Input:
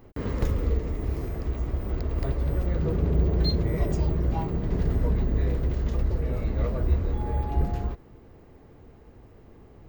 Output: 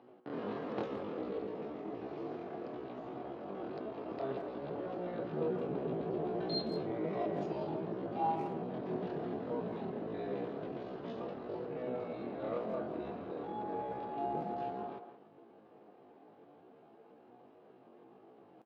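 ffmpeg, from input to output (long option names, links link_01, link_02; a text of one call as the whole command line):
ffmpeg -i in.wav -filter_complex "[0:a]atempo=0.53,highpass=frequency=200:width=0.5412,highpass=frequency=200:width=1.3066,equalizer=frequency=230:width_type=q:width=4:gain=-4,equalizer=frequency=730:width_type=q:width=4:gain=7,equalizer=frequency=2000:width_type=q:width=4:gain=-8,lowpass=frequency=3800:width=0.5412,lowpass=frequency=3800:width=1.3066,asplit=2[link_01][link_02];[link_02]adelay=170,highpass=300,lowpass=3400,asoftclip=type=hard:threshold=-27.5dB,volume=-9dB[link_03];[link_01][link_03]amix=inputs=2:normalize=0,flanger=delay=7.9:depth=2:regen=78:speed=0.34:shape=triangular" out.wav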